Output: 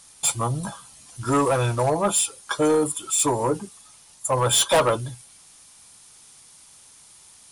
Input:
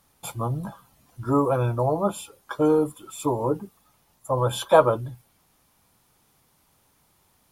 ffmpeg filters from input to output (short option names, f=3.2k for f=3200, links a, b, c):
-filter_complex "[0:a]crystalizer=i=8:c=0,asettb=1/sr,asplit=3[a][b][c];[a]atrim=end=1.214[d];[b]atrim=start=1.21:end=1.9,asetpts=PTS-STARTPTS,afade=t=in:d=0.004:c=qsin,afade=t=out:st=0.686:d=0.004:c=qsin,acrusher=bits=4:mode=log:mix=0:aa=0.000001[e];[c]atrim=start=1.896[f];[d][e]acrossfade=d=0.004:c1=hsin:c2=qsin[g];[g][f]acrossfade=d=0.004:c1=qsin:c2=hsin,aresample=22050,aresample=44100,asoftclip=type=tanh:threshold=-14.5dB,volume=1.5dB"